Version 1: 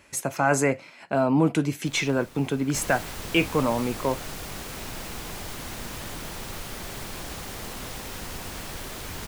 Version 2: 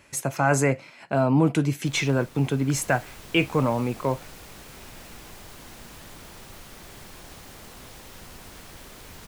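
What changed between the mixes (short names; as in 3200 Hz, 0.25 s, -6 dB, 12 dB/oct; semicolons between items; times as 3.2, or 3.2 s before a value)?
speech: add bell 130 Hz +7.5 dB 0.36 oct; second sound -9.5 dB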